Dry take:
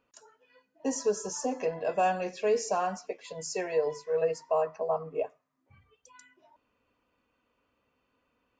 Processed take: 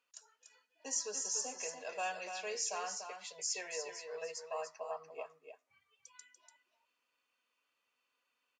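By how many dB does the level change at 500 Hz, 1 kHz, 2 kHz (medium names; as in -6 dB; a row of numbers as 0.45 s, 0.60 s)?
-15.5 dB, -11.5 dB, -4.0 dB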